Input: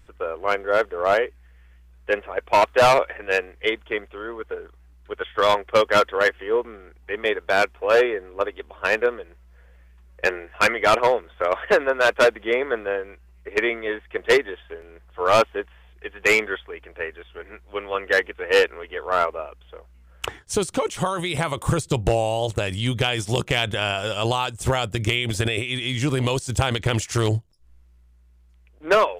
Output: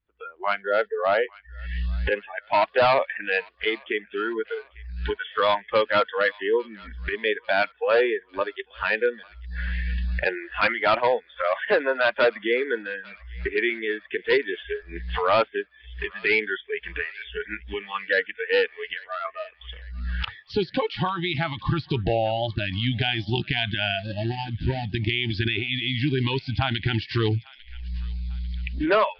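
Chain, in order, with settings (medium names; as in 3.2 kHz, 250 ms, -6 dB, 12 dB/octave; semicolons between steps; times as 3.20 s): 23.99–24.85 s: median filter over 41 samples; recorder AGC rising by 52 dB/s; bass shelf 60 Hz -9 dB; 18.79–19.25 s: compression 16:1, threshold -24 dBFS, peak gain reduction 10 dB; spectral noise reduction 28 dB; peak limiter -13 dBFS, peak gain reduction 11.5 dB; steep low-pass 4.8 kHz 96 dB/octave; feedback echo behind a high-pass 846 ms, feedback 48%, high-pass 1.4 kHz, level -20 dB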